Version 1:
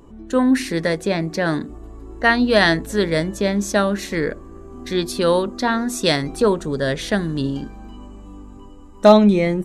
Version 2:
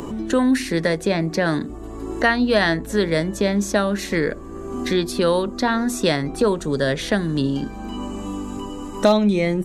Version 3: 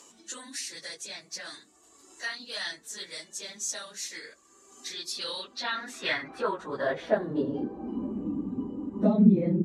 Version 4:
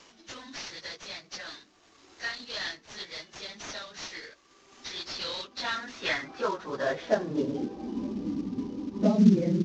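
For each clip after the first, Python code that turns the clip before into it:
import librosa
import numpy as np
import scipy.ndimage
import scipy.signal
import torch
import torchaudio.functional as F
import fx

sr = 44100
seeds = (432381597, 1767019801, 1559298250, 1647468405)

y1 = fx.band_squash(x, sr, depth_pct=70)
y1 = y1 * librosa.db_to_amplitude(-1.0)
y2 = fx.phase_scramble(y1, sr, seeds[0], window_ms=50)
y2 = fx.filter_sweep_bandpass(y2, sr, from_hz=6700.0, to_hz=220.0, start_s=4.91, end_s=8.25, q=1.7)
y3 = fx.cvsd(y2, sr, bps=32000)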